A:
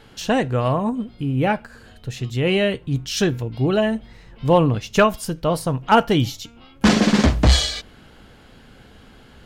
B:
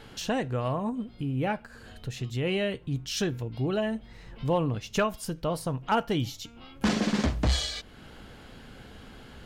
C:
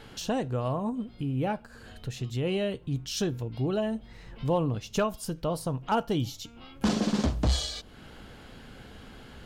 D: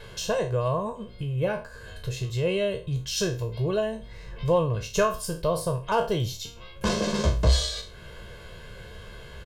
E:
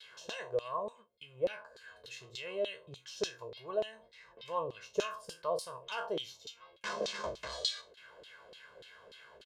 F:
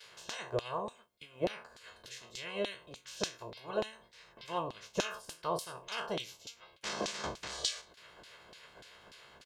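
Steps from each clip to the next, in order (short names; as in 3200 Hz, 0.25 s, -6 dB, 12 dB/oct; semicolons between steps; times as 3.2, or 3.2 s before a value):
compressor 1.5:1, threshold -42 dBFS, peak gain reduction 11.5 dB
dynamic EQ 2000 Hz, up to -8 dB, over -50 dBFS, Q 1.5
spectral trails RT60 0.34 s; comb 1.9 ms, depth 99%
tone controls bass -2 dB, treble +10 dB; LFO band-pass saw down 3.4 Hz 420–4000 Hz; gate with hold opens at -45 dBFS; gain -2.5 dB
spectral limiter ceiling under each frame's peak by 18 dB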